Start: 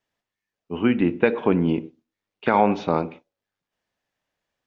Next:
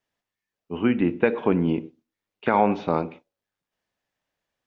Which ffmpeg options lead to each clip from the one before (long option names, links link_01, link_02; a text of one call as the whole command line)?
ffmpeg -i in.wav -filter_complex "[0:a]acrossover=split=3400[link_01][link_02];[link_02]acompressor=threshold=-50dB:ratio=4:attack=1:release=60[link_03];[link_01][link_03]amix=inputs=2:normalize=0,volume=-1.5dB" out.wav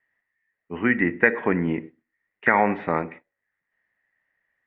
ffmpeg -i in.wav -af "lowpass=frequency=1900:width_type=q:width=15,volume=-2dB" out.wav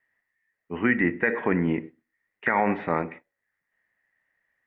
ffmpeg -i in.wav -af "alimiter=limit=-11dB:level=0:latency=1:release=17" out.wav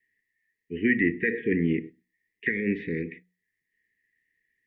ffmpeg -i in.wav -af "asuperstop=centerf=900:order=20:qfactor=0.72,bandreject=frequency=60:width_type=h:width=6,bandreject=frequency=120:width_type=h:width=6,bandreject=frequency=180:width_type=h:width=6" out.wav